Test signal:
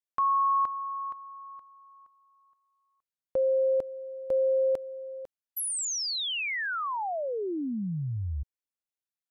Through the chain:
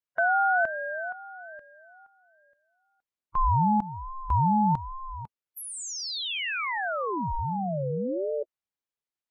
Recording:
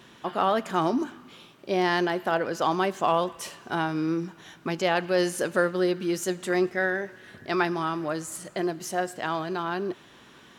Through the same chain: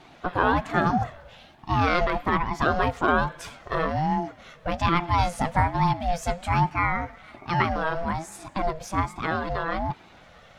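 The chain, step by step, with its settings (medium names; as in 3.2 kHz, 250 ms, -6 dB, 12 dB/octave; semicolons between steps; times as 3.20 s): coarse spectral quantiser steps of 15 dB; treble shelf 5.6 kHz -11.5 dB; ring modulator with a swept carrier 420 Hz, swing 25%, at 1.2 Hz; trim +5.5 dB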